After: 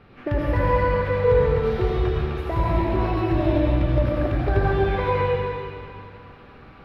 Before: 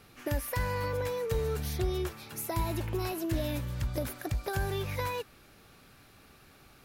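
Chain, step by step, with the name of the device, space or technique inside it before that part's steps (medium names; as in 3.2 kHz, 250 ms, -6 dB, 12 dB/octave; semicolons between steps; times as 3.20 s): distance through air 380 m; swimming-pool hall (reverberation RT60 2.5 s, pre-delay 72 ms, DRR -5 dB; treble shelf 5.7 kHz -6.5 dB); trim +7.5 dB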